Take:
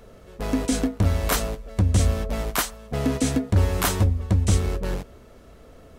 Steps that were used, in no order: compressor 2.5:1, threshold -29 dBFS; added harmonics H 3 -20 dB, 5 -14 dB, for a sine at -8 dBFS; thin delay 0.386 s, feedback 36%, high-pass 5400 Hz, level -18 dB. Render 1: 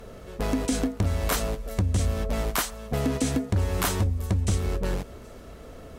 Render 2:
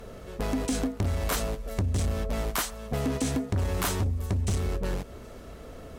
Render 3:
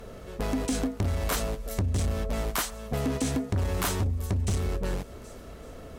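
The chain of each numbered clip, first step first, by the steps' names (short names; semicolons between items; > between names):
compressor > thin delay > added harmonics; added harmonics > compressor > thin delay; thin delay > added harmonics > compressor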